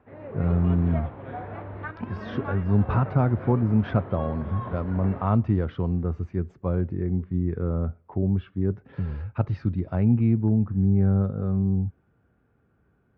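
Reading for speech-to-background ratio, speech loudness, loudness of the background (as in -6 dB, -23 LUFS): 12.0 dB, -25.5 LUFS, -37.5 LUFS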